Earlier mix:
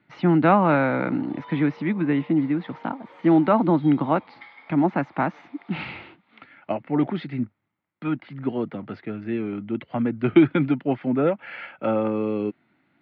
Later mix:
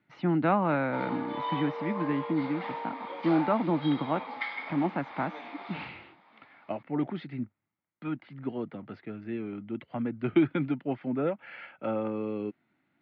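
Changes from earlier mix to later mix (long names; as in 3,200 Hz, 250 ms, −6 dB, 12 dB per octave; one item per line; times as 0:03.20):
speech −8.0 dB
background +11.0 dB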